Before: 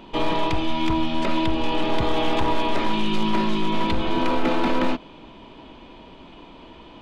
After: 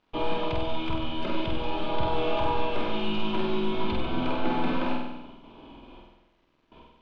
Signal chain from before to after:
noise gate with hold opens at −33 dBFS
parametric band 3,300 Hz +2 dB
notch filter 1,900 Hz, Q 5.5
bit reduction 10 bits
high-frequency loss of the air 220 metres
flutter between parallel walls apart 8.2 metres, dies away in 0.94 s
level −6 dB

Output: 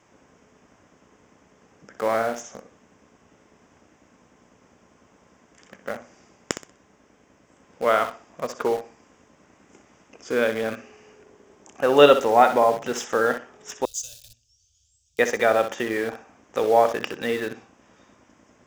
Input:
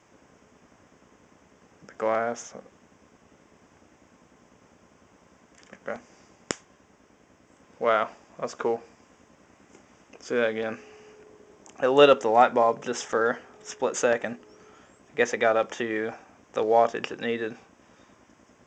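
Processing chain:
flutter between parallel walls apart 10.7 metres, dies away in 0.36 s
in parallel at −10 dB: bit reduction 5 bits
0:13.85–0:15.19: on the sum: inverse Chebyshev band-stop filter 170–2,100 Hz, stop band 40 dB

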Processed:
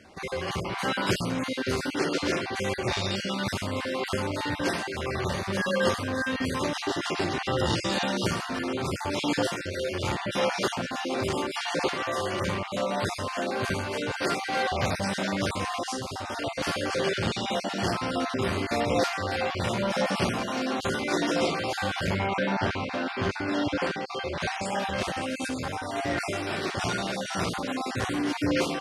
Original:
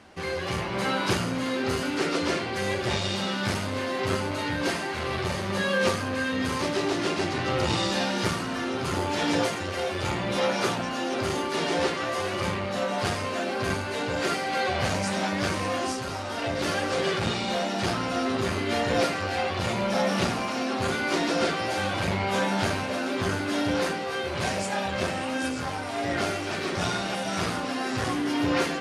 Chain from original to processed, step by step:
time-frequency cells dropped at random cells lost 25%
0:22.26–0:24.64: low-pass filter 3,500 Hz → 6,500 Hz 12 dB per octave

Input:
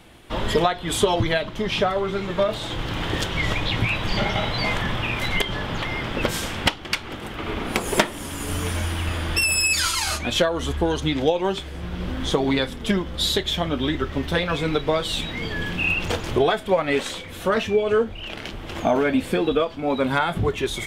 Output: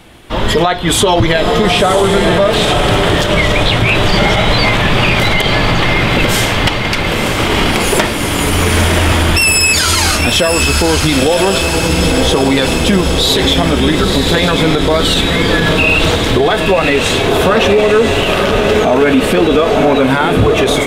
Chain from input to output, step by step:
feedback delay with all-pass diffusion 987 ms, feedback 63%, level −6 dB
automatic gain control
boost into a limiter +9.5 dB
level −1 dB

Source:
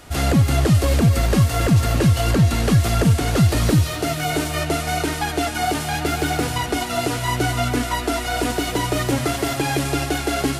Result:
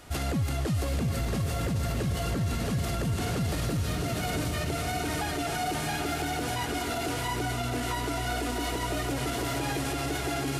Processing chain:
on a send: feedback delay with all-pass diffusion 746 ms, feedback 44%, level −5 dB
on the sum: brickwall limiter −15.5 dBFS, peak gain reduction 11.5 dB
level −6 dB

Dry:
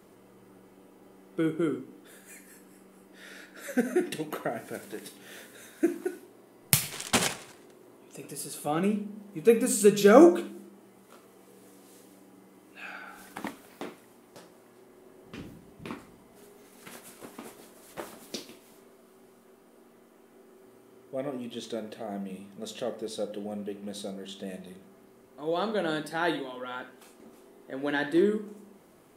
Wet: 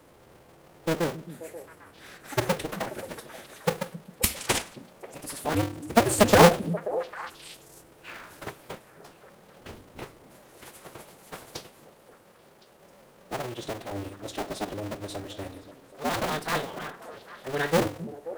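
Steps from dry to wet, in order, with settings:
sub-harmonics by changed cycles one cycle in 2, inverted
phase-vocoder stretch with locked phases 0.63×
echo through a band-pass that steps 266 ms, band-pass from 200 Hz, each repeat 1.4 octaves, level −8.5 dB
level +2 dB

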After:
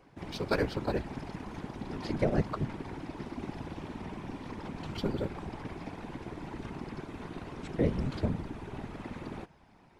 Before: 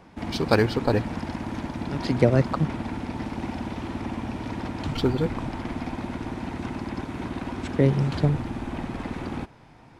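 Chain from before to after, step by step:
random phases in short frames
level −9 dB

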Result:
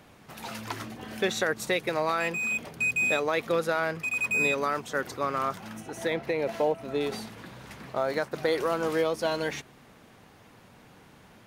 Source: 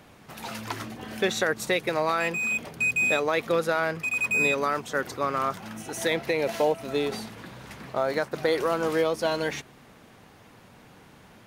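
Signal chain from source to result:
0:05.80–0:07.01: high-shelf EQ 2,900 Hz −9 dB
level −2 dB

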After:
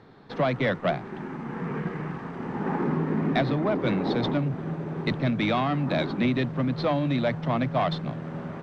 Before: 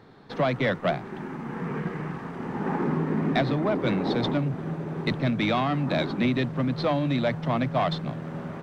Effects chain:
high-frequency loss of the air 53 metres

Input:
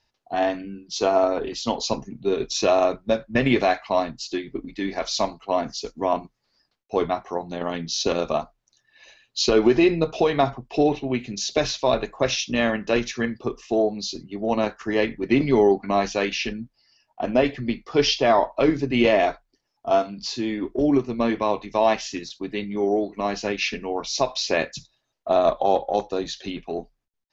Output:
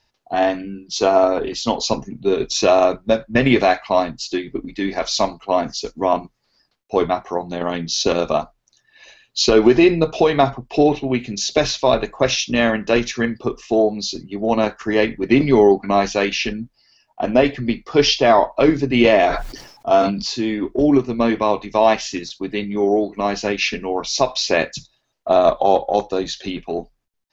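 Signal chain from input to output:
0:19.26–0:20.24: level that may fall only so fast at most 67 dB per second
level +5 dB

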